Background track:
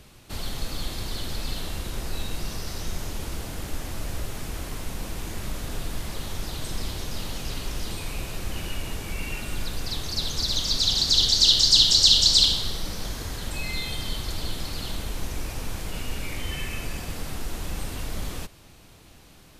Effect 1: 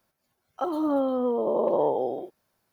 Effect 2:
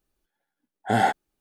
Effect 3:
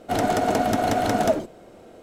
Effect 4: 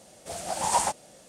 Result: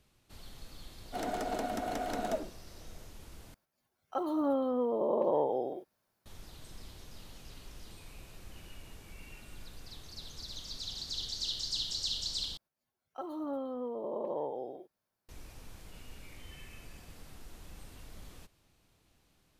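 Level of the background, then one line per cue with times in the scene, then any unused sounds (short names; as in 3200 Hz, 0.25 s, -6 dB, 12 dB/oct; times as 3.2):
background track -18.5 dB
1.04 add 3 -13.5 dB + HPF 180 Hz
3.54 replace with 1 -5.5 dB
12.57 replace with 1 -12.5 dB
not used: 2, 4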